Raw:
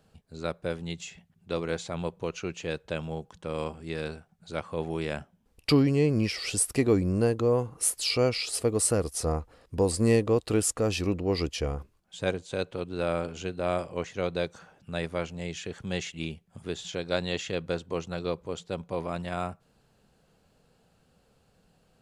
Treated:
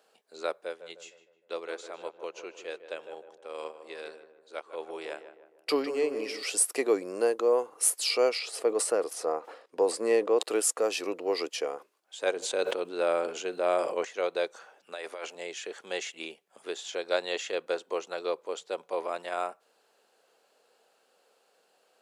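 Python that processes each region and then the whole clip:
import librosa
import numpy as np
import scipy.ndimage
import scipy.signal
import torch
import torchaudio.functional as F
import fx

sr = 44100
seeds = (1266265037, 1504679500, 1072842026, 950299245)

y = fx.chain(x, sr, fx.echo_filtered(ms=154, feedback_pct=62, hz=1700.0, wet_db=-7.5),
    fx.upward_expand(threshold_db=-46.0, expansion=1.5), at=(0.64, 6.43))
y = fx.chain(y, sr, fx.lowpass(hz=3000.0, slope=6),
    fx.sustainer(db_per_s=110.0), at=(8.39, 10.43))
y = fx.chain(y, sr, fx.low_shelf(hz=200.0, db=11.0),
    fx.sustainer(db_per_s=39.0), at=(12.36, 14.05))
y = fx.chain(y, sr, fx.highpass(hz=400.0, slope=6),
    fx.over_compress(threshold_db=-38.0, ratio=-1.0), at=(14.92, 15.35))
y = scipy.signal.sosfilt(scipy.signal.butter(4, 400.0, 'highpass', fs=sr, output='sos'), y)
y = fx.dynamic_eq(y, sr, hz=3700.0, q=0.77, threshold_db=-45.0, ratio=4.0, max_db=-3)
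y = F.gain(torch.from_numpy(y), 2.0).numpy()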